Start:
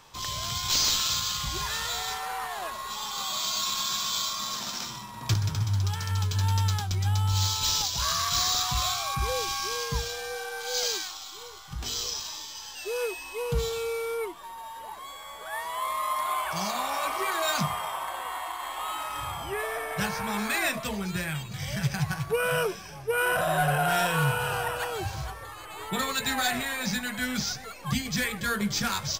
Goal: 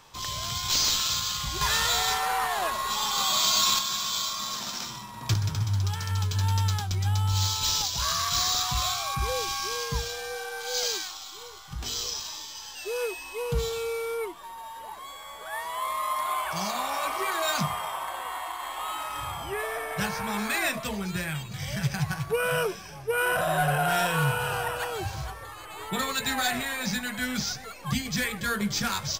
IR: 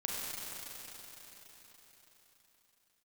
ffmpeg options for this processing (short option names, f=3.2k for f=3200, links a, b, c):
-filter_complex "[0:a]asettb=1/sr,asplit=3[a][b][c];[a]atrim=end=1.614[d];[b]atrim=start=1.61:end=3.79,asetpts=PTS-STARTPTS,afade=t=in:d=0.004:c=qsin,afade=t=out:st=2.176:d=0.004:c=qsin,acontrast=63[e];[c]atrim=start=3.786[f];[d][e]acrossfade=d=0.004:c1=hsin:c2=qsin[g];[g][f]acrossfade=d=0.004:c1=qsin:c2=hsin"